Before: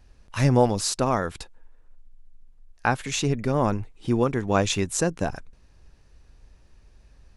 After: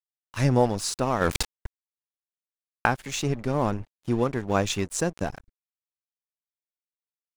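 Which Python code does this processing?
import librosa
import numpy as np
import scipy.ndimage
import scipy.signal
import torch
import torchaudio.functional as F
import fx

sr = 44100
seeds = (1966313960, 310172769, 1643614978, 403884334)

y = np.sign(x) * np.maximum(np.abs(x) - 10.0 ** (-39.0 / 20.0), 0.0)
y = fx.env_flatten(y, sr, amount_pct=70, at=(1.2, 2.86), fade=0.02)
y = F.gain(torch.from_numpy(y), -1.5).numpy()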